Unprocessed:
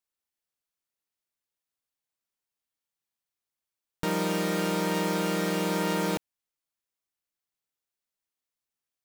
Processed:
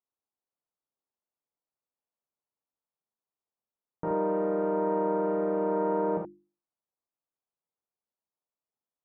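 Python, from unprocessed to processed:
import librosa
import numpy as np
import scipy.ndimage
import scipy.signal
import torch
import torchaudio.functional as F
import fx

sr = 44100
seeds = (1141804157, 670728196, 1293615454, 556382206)

p1 = scipy.signal.sosfilt(scipy.signal.butter(4, 1100.0, 'lowpass', fs=sr, output='sos'), x)
p2 = fx.low_shelf(p1, sr, hz=99.0, db=-11.0)
p3 = fx.hum_notches(p2, sr, base_hz=50, count=7)
y = p3 + fx.room_early_taps(p3, sr, ms=(43, 77), db=(-6.5, -6.0), dry=0)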